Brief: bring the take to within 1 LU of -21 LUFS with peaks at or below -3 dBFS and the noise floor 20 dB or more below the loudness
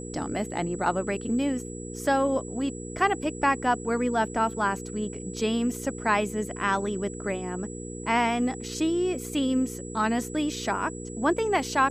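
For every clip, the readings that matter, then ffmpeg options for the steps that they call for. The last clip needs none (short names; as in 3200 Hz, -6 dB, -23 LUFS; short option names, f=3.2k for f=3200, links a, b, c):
hum 60 Hz; harmonics up to 480 Hz; hum level -36 dBFS; steady tone 7800 Hz; tone level -43 dBFS; loudness -27.5 LUFS; peak -10.0 dBFS; loudness target -21.0 LUFS
-> -af "bandreject=f=60:t=h:w=4,bandreject=f=120:t=h:w=4,bandreject=f=180:t=h:w=4,bandreject=f=240:t=h:w=4,bandreject=f=300:t=h:w=4,bandreject=f=360:t=h:w=4,bandreject=f=420:t=h:w=4,bandreject=f=480:t=h:w=4"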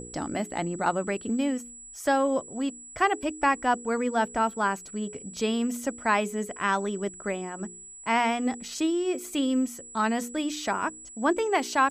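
hum none; steady tone 7800 Hz; tone level -43 dBFS
-> -af "bandreject=f=7.8k:w=30"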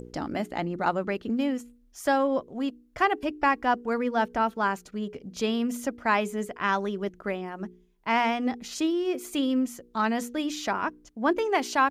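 steady tone none; loudness -28.0 LUFS; peak -10.5 dBFS; loudness target -21.0 LUFS
-> -af "volume=7dB"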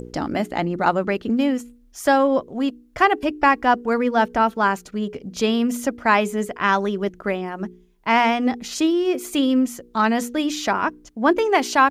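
loudness -21.0 LUFS; peak -3.5 dBFS; noise floor -53 dBFS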